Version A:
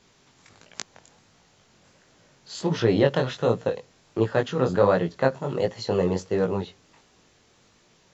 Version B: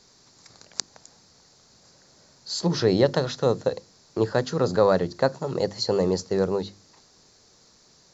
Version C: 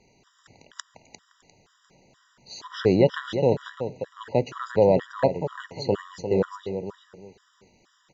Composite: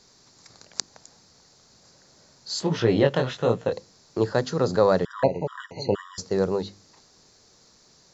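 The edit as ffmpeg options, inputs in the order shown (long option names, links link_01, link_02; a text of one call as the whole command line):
ffmpeg -i take0.wav -i take1.wav -i take2.wav -filter_complex "[1:a]asplit=3[link_01][link_02][link_03];[link_01]atrim=end=2.602[link_04];[0:a]atrim=start=2.598:end=3.722[link_05];[link_02]atrim=start=3.718:end=5.052[link_06];[2:a]atrim=start=5.048:end=6.182[link_07];[link_03]atrim=start=6.178[link_08];[link_04][link_05]acrossfade=duration=0.004:curve1=hsin:curve2=hsin[link_09];[link_09][link_06]acrossfade=duration=0.004:curve1=hsin:curve2=hsin[link_10];[link_10][link_07]acrossfade=duration=0.004:curve1=hsin:curve2=hsin[link_11];[link_11][link_08]acrossfade=duration=0.004:curve1=hsin:curve2=hsin" out.wav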